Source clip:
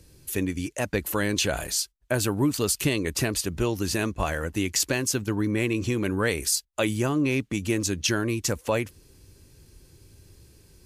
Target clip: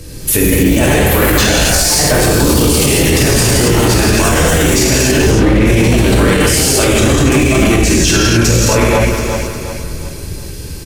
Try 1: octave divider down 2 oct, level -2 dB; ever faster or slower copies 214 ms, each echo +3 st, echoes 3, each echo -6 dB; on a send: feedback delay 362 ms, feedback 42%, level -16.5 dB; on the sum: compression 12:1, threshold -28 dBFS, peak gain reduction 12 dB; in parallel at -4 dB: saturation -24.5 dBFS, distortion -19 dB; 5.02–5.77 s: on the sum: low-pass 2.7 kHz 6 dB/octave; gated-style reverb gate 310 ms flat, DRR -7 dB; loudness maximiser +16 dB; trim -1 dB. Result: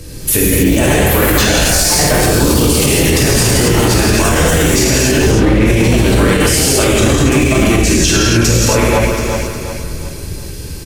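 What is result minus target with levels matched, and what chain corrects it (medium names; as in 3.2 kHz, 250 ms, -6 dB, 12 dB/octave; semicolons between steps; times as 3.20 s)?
compression: peak gain reduction +7.5 dB
octave divider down 2 oct, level -2 dB; ever faster or slower copies 214 ms, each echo +3 st, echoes 3, each echo -6 dB; on a send: feedback delay 362 ms, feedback 42%, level -16.5 dB; on the sum: compression 12:1, threshold -20 dBFS, peak gain reduction 4.5 dB; in parallel at -4 dB: saturation -24.5 dBFS, distortion -11 dB; 5.02–5.77 s: on the sum: low-pass 2.7 kHz 6 dB/octave; gated-style reverb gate 310 ms flat, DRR -7 dB; loudness maximiser +16 dB; trim -1 dB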